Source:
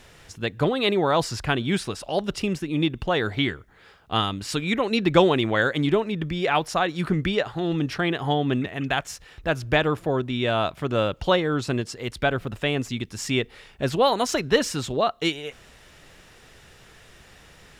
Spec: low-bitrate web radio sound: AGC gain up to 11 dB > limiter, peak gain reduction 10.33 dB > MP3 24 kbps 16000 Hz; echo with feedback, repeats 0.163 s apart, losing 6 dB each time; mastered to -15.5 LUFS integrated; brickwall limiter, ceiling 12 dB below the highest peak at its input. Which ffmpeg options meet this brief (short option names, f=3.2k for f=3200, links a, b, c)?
-af "alimiter=limit=-15.5dB:level=0:latency=1,aecho=1:1:163|326|489|652|815|978:0.501|0.251|0.125|0.0626|0.0313|0.0157,dynaudnorm=m=11dB,alimiter=limit=-17dB:level=0:latency=1,volume=11.5dB" -ar 16000 -c:a libmp3lame -b:a 24k